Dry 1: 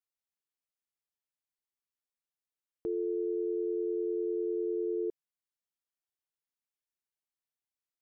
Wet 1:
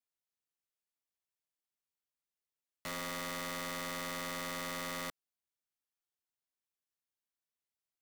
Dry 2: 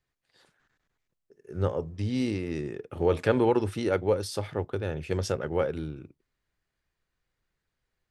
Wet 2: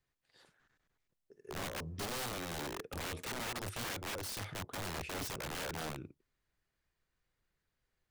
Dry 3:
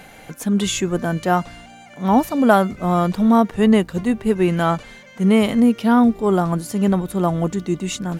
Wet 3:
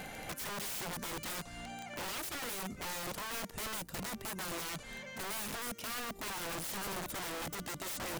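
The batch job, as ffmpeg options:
ffmpeg -i in.wav -filter_complex "[0:a]acrossover=split=5900[link_01][link_02];[link_01]acompressor=threshold=-29dB:ratio=8[link_03];[link_03][link_02]amix=inputs=2:normalize=0,aeval=exprs='(mod(42.2*val(0)+1,2)-1)/42.2':channel_layout=same,volume=-2.5dB" out.wav

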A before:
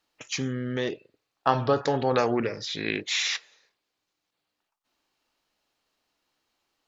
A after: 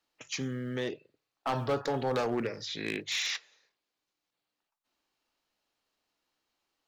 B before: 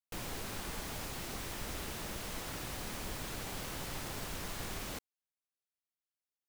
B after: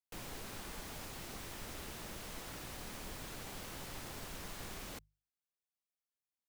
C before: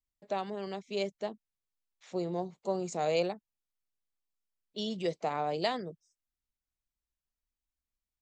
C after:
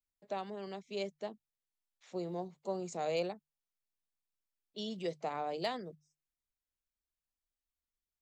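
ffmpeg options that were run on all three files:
ffmpeg -i in.wav -filter_complex "[0:a]acrossover=split=130[link_01][link_02];[link_01]acrusher=bits=6:mode=log:mix=0:aa=0.000001[link_03];[link_02]asoftclip=type=hard:threshold=-19.5dB[link_04];[link_03][link_04]amix=inputs=2:normalize=0,bandreject=frequency=50:width_type=h:width=6,bandreject=frequency=100:width_type=h:width=6,bandreject=frequency=150:width_type=h:width=6,volume=-5dB" out.wav

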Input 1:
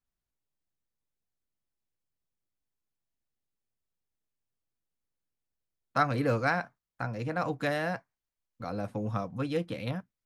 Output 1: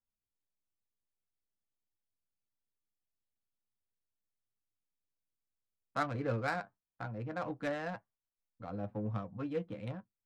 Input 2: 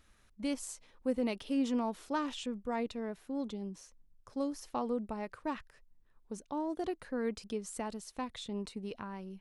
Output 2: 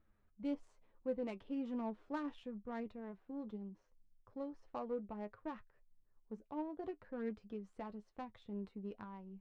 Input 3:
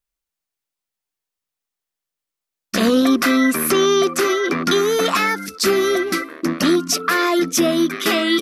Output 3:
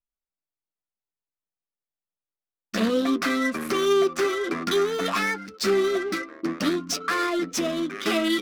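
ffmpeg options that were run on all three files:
ffmpeg -i in.wav -af "flanger=delay=9.2:depth=1.2:regen=41:speed=1.1:shape=sinusoidal,adynamicsmooth=sensitivity=5:basefreq=1400,volume=-3dB" out.wav

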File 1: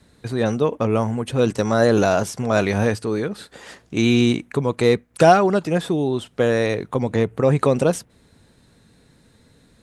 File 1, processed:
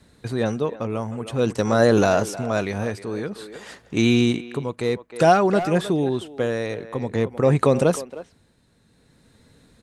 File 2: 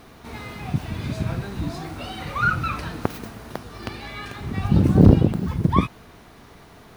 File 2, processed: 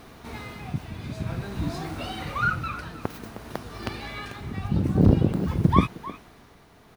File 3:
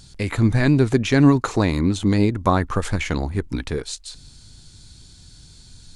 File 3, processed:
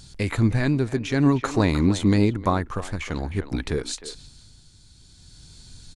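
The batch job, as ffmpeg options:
ffmpeg -i in.wav -filter_complex "[0:a]asplit=2[link_01][link_02];[link_02]adelay=310,highpass=300,lowpass=3400,asoftclip=type=hard:threshold=-9dB,volume=-13dB[link_03];[link_01][link_03]amix=inputs=2:normalize=0,tremolo=f=0.52:d=0.56" out.wav

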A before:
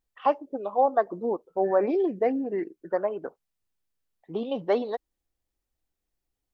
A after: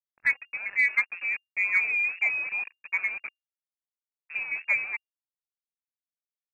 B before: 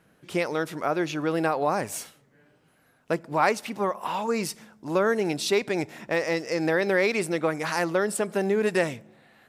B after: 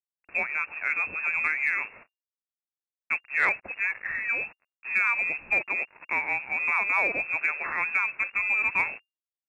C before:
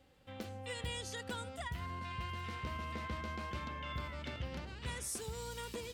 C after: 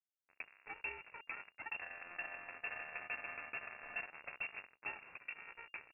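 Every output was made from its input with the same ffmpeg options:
ffmpeg -i in.wav -af "acrusher=bits=5:mix=0:aa=0.5,lowpass=frequency=2400:width_type=q:width=0.5098,lowpass=frequency=2400:width_type=q:width=0.6013,lowpass=frequency=2400:width_type=q:width=0.9,lowpass=frequency=2400:width_type=q:width=2.563,afreqshift=-2800,aeval=exprs='0.355*(cos(1*acos(clip(val(0)/0.355,-1,1)))-cos(1*PI/2))+0.0355*(cos(2*acos(clip(val(0)/0.355,-1,1)))-cos(2*PI/2))+0.0112*(cos(4*acos(clip(val(0)/0.355,-1,1)))-cos(4*PI/2))+0.00251*(cos(7*acos(clip(val(0)/0.355,-1,1)))-cos(7*PI/2))':channel_layout=same,volume=-2dB" out.wav

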